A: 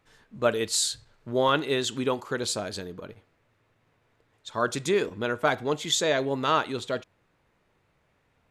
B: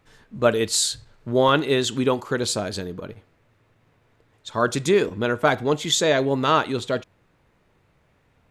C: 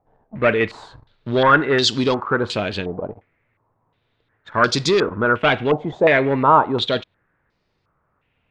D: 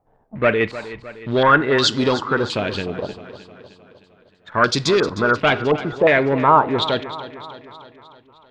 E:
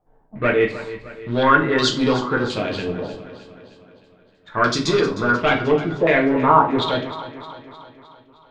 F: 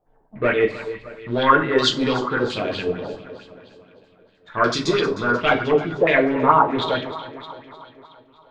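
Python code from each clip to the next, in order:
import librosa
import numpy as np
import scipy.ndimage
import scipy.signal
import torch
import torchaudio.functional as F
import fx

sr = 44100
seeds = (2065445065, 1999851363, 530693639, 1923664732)

y1 = fx.low_shelf(x, sr, hz=340.0, db=4.5)
y1 = F.gain(torch.from_numpy(y1), 4.0).numpy()
y2 = fx.leveller(y1, sr, passes=2)
y2 = fx.filter_held_lowpass(y2, sr, hz=2.8, low_hz=750.0, high_hz=4800.0)
y2 = F.gain(torch.from_numpy(y2), -4.0).numpy()
y3 = fx.echo_feedback(y2, sr, ms=308, feedback_pct=56, wet_db=-14.5)
y4 = fx.room_shoebox(y3, sr, seeds[0], volume_m3=33.0, walls='mixed', distance_m=0.52)
y4 = F.gain(torch.from_numpy(y4), -4.5).numpy()
y5 = fx.bell_lfo(y4, sr, hz=4.5, low_hz=390.0, high_hz=3500.0, db=9)
y5 = F.gain(torch.from_numpy(y5), -3.5).numpy()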